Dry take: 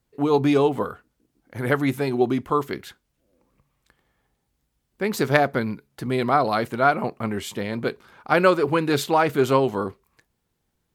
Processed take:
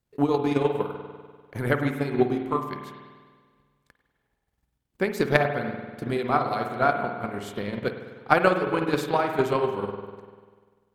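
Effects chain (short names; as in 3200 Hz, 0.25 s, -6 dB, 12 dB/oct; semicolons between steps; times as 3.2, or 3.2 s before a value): spring tank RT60 1.6 s, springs 49 ms, chirp 60 ms, DRR 0.5 dB; transient shaper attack +11 dB, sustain -5 dB; gain -8.5 dB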